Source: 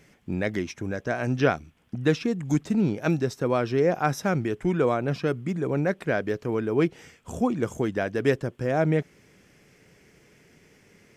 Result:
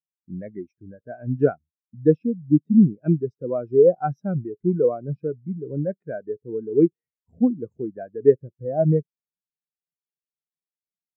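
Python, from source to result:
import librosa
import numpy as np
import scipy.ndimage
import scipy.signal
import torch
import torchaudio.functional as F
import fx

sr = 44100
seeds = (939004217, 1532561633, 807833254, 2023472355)

y = fx.spectral_expand(x, sr, expansion=2.5)
y = y * 10.0 ** (4.5 / 20.0)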